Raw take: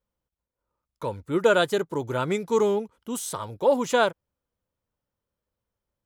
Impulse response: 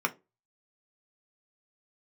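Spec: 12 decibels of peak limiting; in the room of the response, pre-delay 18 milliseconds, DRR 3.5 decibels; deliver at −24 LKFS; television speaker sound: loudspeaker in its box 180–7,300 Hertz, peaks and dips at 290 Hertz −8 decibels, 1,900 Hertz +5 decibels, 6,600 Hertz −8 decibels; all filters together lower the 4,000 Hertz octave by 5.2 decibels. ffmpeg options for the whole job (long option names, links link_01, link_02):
-filter_complex "[0:a]equalizer=frequency=4000:width_type=o:gain=-6.5,alimiter=limit=-20.5dB:level=0:latency=1,asplit=2[link_01][link_02];[1:a]atrim=start_sample=2205,adelay=18[link_03];[link_02][link_03]afir=irnorm=-1:irlink=0,volume=-13dB[link_04];[link_01][link_04]amix=inputs=2:normalize=0,highpass=frequency=180:width=0.5412,highpass=frequency=180:width=1.3066,equalizer=frequency=290:width_type=q:width=4:gain=-8,equalizer=frequency=1900:width_type=q:width=4:gain=5,equalizer=frequency=6600:width_type=q:width=4:gain=-8,lowpass=frequency=7300:width=0.5412,lowpass=frequency=7300:width=1.3066,volume=6.5dB"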